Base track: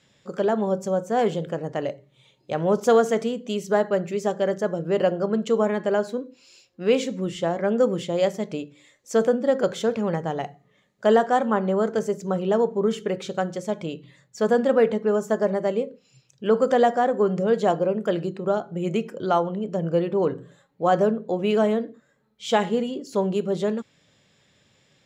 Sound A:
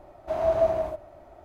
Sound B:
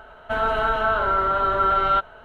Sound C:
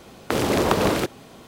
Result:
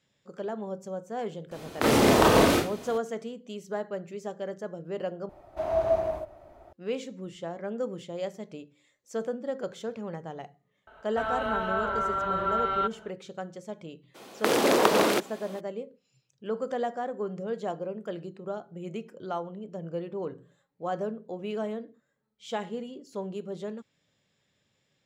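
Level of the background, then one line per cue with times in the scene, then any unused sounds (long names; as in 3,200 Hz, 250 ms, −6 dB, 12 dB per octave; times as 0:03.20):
base track −12 dB
0:01.51: mix in C −3.5 dB + four-comb reverb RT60 0.34 s, combs from 25 ms, DRR −3 dB
0:05.29: overwrite with A −2.5 dB
0:10.87: mix in B −8 dB + high-pass filter 51 Hz
0:14.14: mix in C −0.5 dB, fades 0.02 s + high-pass filter 300 Hz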